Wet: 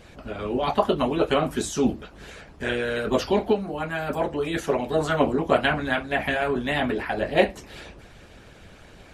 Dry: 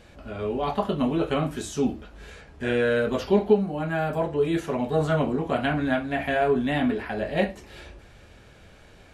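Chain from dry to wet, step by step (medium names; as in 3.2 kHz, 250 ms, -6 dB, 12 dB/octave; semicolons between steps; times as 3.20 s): harmonic-percussive split harmonic -14 dB; trim +8 dB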